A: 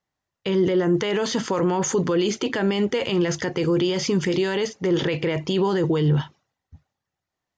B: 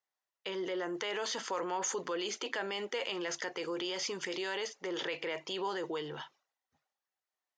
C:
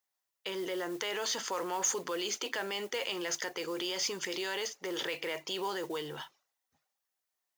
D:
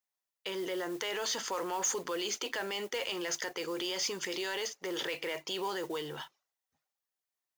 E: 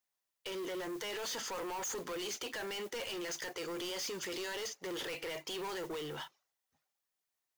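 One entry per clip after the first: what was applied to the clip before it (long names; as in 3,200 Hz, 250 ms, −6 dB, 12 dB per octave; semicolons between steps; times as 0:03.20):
high-pass filter 590 Hz 12 dB per octave; level −8 dB
high-shelf EQ 5,500 Hz +9.5 dB; noise that follows the level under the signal 19 dB
leveller curve on the samples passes 1; level −3.5 dB
soft clipping −39 dBFS, distortion −8 dB; level +2 dB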